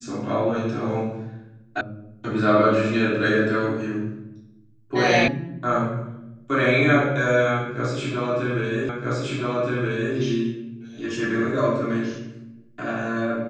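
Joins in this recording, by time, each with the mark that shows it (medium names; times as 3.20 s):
1.81 s: sound stops dead
5.28 s: sound stops dead
8.89 s: repeat of the last 1.27 s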